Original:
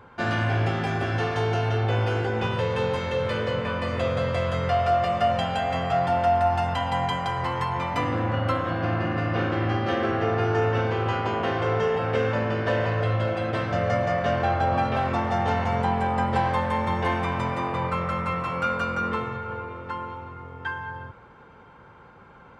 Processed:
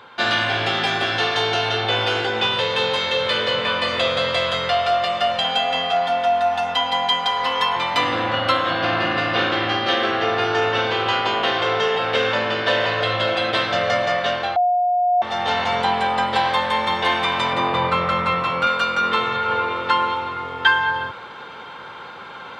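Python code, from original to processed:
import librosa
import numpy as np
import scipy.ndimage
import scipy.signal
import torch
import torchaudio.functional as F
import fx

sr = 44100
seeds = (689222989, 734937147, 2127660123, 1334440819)

y = fx.comb(x, sr, ms=4.1, depth=0.92, at=(5.44, 7.76))
y = fx.tilt_eq(y, sr, slope=-2.0, at=(17.53, 18.67))
y = fx.edit(y, sr, fx.bleep(start_s=14.56, length_s=0.66, hz=716.0, db=-10.5), tone=tone)
y = fx.highpass(y, sr, hz=670.0, slope=6)
y = fx.peak_eq(y, sr, hz=3700.0, db=13.0, octaves=0.75)
y = fx.rider(y, sr, range_db=10, speed_s=0.5)
y = F.gain(torch.from_numpy(y), 5.5).numpy()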